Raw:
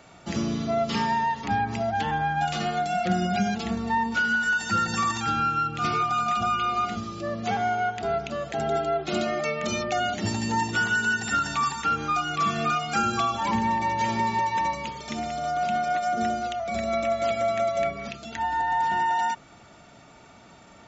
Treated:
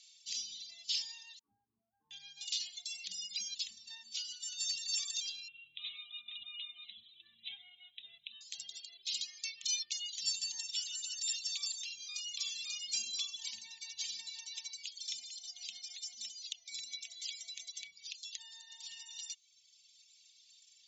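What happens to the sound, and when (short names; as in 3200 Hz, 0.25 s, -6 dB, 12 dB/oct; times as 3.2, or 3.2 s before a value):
1.39–2.11 rippled Chebyshev low-pass 1500 Hz, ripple 9 dB
5.48–8.41 brick-wall FIR low-pass 4000 Hz
12.72–13.41 small resonant body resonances 250/390 Hz, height 10 dB, ringing for 20 ms
whole clip: LPF 6200 Hz 12 dB/oct; reverb removal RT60 1.5 s; inverse Chebyshev high-pass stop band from 1500 Hz, stop band 50 dB; gain +5.5 dB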